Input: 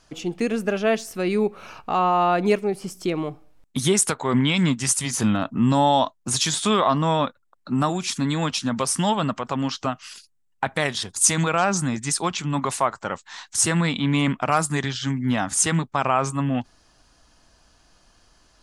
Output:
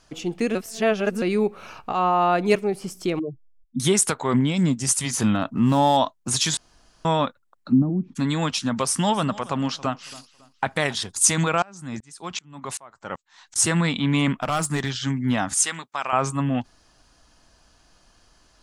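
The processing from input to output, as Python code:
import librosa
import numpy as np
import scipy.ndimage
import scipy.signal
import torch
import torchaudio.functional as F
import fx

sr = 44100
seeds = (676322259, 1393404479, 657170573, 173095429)

y = fx.band_widen(x, sr, depth_pct=100, at=(1.92, 2.55))
y = fx.spec_expand(y, sr, power=3.7, at=(3.19, 3.8))
y = fx.band_shelf(y, sr, hz=1900.0, db=-8.5, octaves=2.4, at=(4.36, 4.88))
y = fx.median_filter(y, sr, points=9, at=(5.48, 5.97))
y = fx.lowpass_res(y, sr, hz=250.0, q=2.3, at=(7.71, 8.15), fade=0.02)
y = fx.echo_feedback(y, sr, ms=276, feedback_pct=33, wet_db=-20, at=(8.71, 11.0))
y = fx.tremolo_decay(y, sr, direction='swelling', hz=2.6, depth_db=30, at=(11.62, 13.56))
y = fx.clip_hard(y, sr, threshold_db=-18.0, at=(14.33, 15.02))
y = fx.highpass(y, sr, hz=1500.0, slope=6, at=(15.54, 16.13))
y = fx.edit(y, sr, fx.reverse_span(start_s=0.55, length_s=0.67),
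    fx.room_tone_fill(start_s=6.57, length_s=0.48), tone=tone)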